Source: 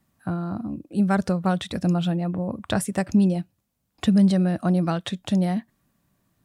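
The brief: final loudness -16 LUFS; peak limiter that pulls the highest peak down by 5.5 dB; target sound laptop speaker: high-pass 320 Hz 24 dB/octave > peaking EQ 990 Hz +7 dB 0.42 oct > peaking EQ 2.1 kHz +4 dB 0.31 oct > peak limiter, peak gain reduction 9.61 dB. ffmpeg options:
-af "alimiter=limit=0.168:level=0:latency=1,highpass=f=320:w=0.5412,highpass=f=320:w=1.3066,equalizer=f=990:t=o:w=0.42:g=7,equalizer=f=2100:t=o:w=0.31:g=4,volume=9.44,alimiter=limit=0.631:level=0:latency=1"

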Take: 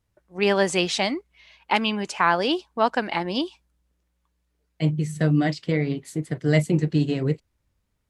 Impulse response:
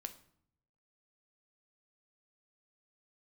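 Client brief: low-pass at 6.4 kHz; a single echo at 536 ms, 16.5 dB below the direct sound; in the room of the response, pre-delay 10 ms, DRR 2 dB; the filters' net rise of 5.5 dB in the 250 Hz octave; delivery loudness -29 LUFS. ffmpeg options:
-filter_complex "[0:a]lowpass=6400,equalizer=f=250:t=o:g=8,aecho=1:1:536:0.15,asplit=2[s0][s1];[1:a]atrim=start_sample=2205,adelay=10[s2];[s1][s2]afir=irnorm=-1:irlink=0,volume=1.19[s3];[s0][s3]amix=inputs=2:normalize=0,volume=0.299"

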